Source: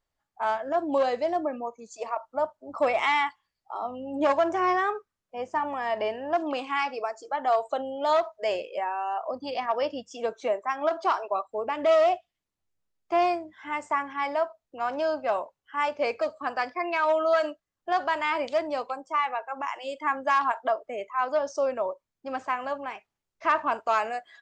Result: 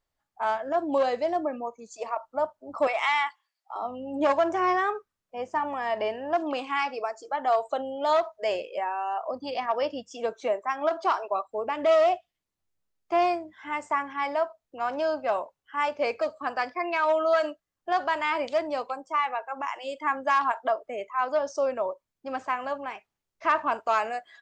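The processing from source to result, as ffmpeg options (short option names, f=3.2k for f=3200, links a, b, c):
-filter_complex "[0:a]asettb=1/sr,asplit=3[a][b][c];[a]atrim=end=2.874[d];[b]atrim=start=2.87:end=3.76,asetpts=PTS-STARTPTS,afade=t=in:d=0.004:c=qsin,afade=t=out:st=0.886:d=0.004:c=qsin,highpass=690[e];[c]atrim=start=3.756[f];[d][e]acrossfade=d=0.004:c1=hsin:c2=qsin[g];[g][f]acrossfade=d=0.004:c1=qsin:c2=hsin"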